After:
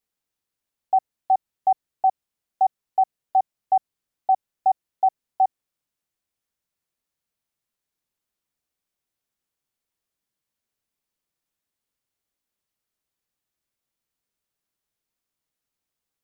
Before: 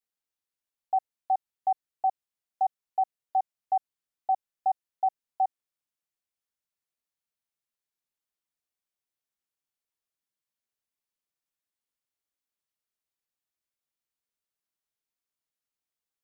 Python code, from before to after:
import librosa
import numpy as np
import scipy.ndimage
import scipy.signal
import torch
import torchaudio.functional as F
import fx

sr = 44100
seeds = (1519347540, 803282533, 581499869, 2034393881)

y = fx.low_shelf(x, sr, hz=460.0, db=6.0)
y = y * librosa.db_to_amplitude(5.0)